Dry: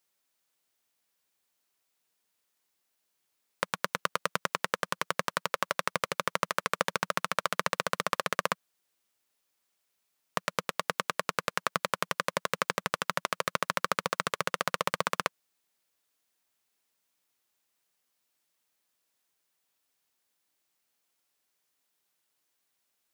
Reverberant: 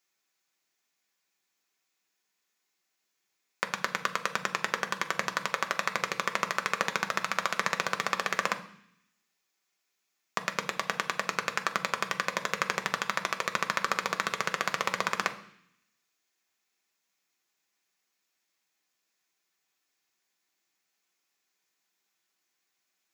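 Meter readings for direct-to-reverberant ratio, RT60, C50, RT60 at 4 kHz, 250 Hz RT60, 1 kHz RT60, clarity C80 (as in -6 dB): 5.0 dB, 0.65 s, 14.0 dB, 0.85 s, 0.90 s, 0.65 s, 17.0 dB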